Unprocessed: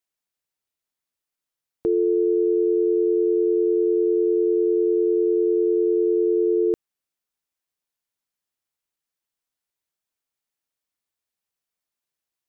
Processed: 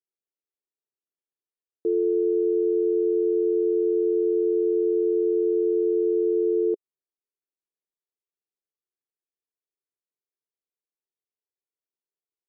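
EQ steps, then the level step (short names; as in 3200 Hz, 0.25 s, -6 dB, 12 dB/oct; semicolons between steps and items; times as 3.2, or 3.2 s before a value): band-pass 400 Hz, Q 3.9; 0.0 dB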